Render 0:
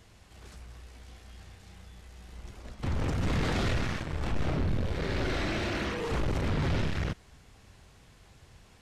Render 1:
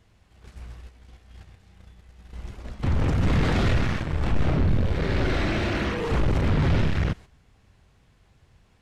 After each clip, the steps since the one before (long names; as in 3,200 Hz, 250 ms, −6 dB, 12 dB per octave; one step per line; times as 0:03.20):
bass and treble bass +3 dB, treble −5 dB
noise gate −44 dBFS, range −10 dB
level +5 dB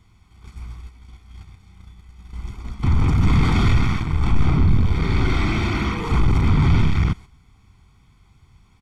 comb filter 0.9 ms, depth 82%
level +1 dB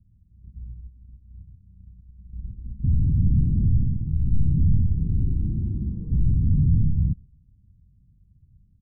transistor ladder low-pass 240 Hz, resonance 20%
level +1.5 dB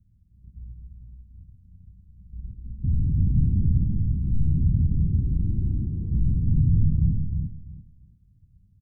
repeating echo 342 ms, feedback 21%, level −3.5 dB
level −2.5 dB